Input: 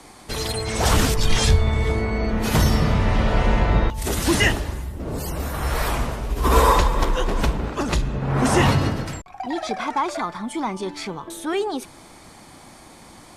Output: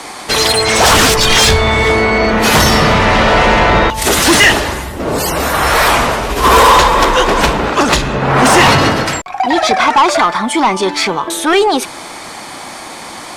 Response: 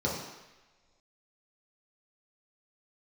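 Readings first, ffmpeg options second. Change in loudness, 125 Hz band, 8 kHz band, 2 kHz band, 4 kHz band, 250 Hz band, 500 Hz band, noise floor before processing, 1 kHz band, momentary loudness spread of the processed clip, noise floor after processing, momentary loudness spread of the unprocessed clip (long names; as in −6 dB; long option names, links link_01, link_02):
+12.0 dB, +3.5 dB, +14.0 dB, +15.5 dB, +15.5 dB, +9.0 dB, +12.5 dB, −46 dBFS, +14.5 dB, 12 LU, −29 dBFS, 12 LU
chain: -filter_complex "[0:a]asplit=2[link_01][link_02];[link_02]highpass=frequency=720:poles=1,volume=19dB,asoftclip=type=tanh:threshold=-3dB[link_03];[link_01][link_03]amix=inputs=2:normalize=0,lowpass=frequency=5900:poles=1,volume=-6dB,acontrast=84"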